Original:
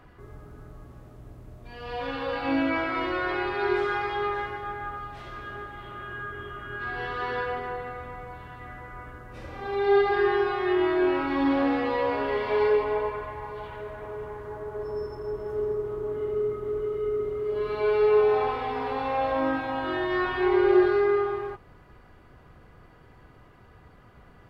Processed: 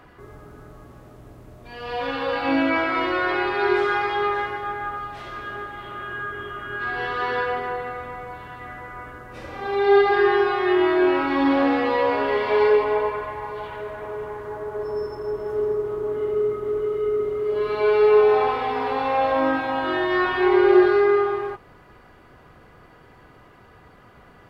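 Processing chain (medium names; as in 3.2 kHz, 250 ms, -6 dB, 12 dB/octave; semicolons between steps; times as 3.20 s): bass shelf 150 Hz -9 dB; trim +6 dB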